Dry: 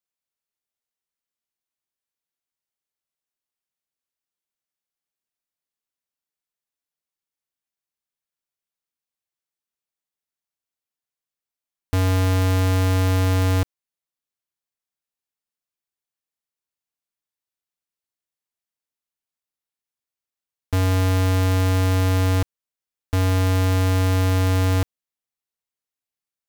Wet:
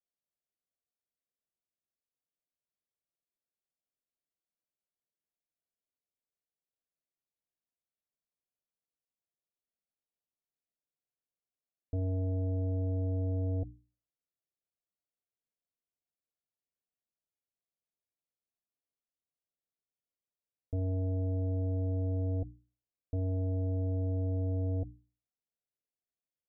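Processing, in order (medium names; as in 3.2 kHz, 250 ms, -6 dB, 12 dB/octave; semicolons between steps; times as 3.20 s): Chebyshev low-pass 720 Hz, order 6; hum notches 60/120/180/240/300 Hz; peak limiter -26.5 dBFS, peak gain reduction 11 dB; trim -2 dB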